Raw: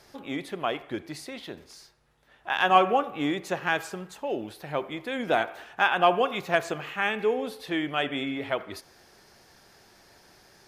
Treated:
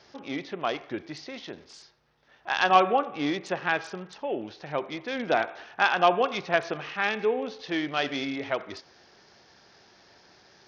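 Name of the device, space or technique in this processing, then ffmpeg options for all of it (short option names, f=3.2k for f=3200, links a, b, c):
Bluetooth headset: -af "highpass=f=110:p=1,aresample=16000,aresample=44100" -ar 48000 -c:a sbc -b:a 64k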